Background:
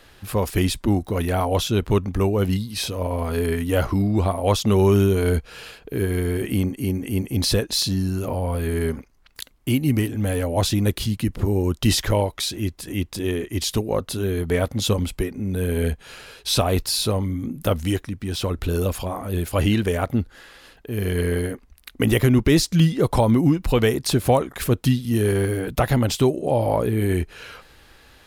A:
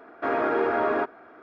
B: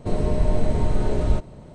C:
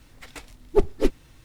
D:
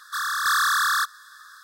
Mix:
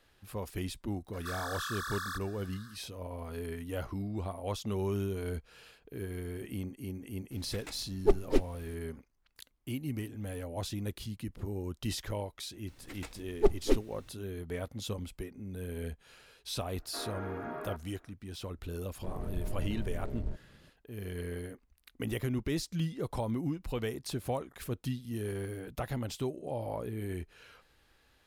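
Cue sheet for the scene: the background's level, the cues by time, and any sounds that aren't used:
background −16.5 dB
0:01.13: mix in D −9 dB + downward compressor 5 to 1, threshold −30 dBFS
0:07.31: mix in C −5.5 dB
0:12.67: mix in C −5.5 dB
0:16.71: mix in A −17 dB
0:18.96: mix in B −16.5 dB + adaptive Wiener filter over 41 samples

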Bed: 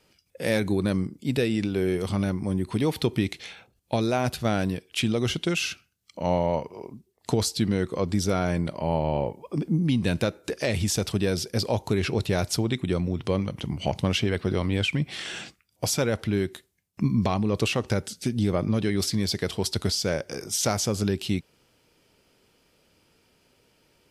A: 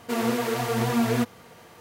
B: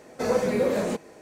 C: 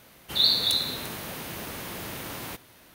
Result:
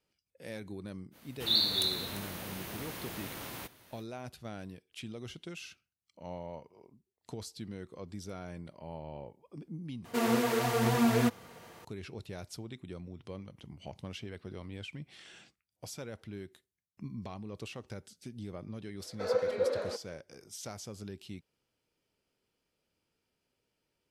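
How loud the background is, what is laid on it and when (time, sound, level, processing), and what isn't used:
bed −18.5 dB
0:01.11: mix in C −6 dB, fades 0.05 s
0:10.05: overwrite with A −3 dB
0:19.00: mix in B −13 dB + loudspeaker in its box 390–5,400 Hz, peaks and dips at 510 Hz +10 dB, 1,400 Hz +9 dB, 4,100 Hz +6 dB

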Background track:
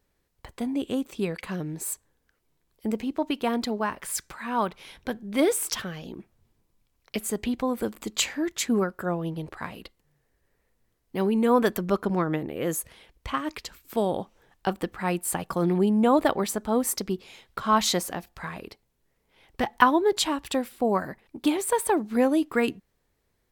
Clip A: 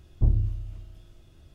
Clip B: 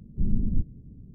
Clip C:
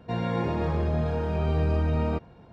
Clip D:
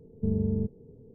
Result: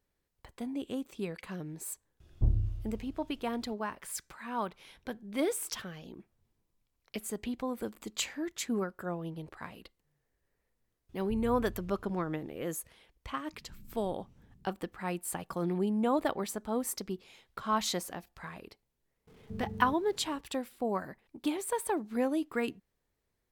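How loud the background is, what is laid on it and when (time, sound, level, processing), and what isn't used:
background track −8.5 dB
0:02.20: mix in A −5.5 dB
0:11.09: mix in A −9.5 dB + downward compressor, threshold −28 dBFS
0:13.52: mix in B −14 dB + downward compressor, threshold −34 dBFS
0:19.27: mix in D −14 dB + converter with a step at zero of −41.5 dBFS
not used: C

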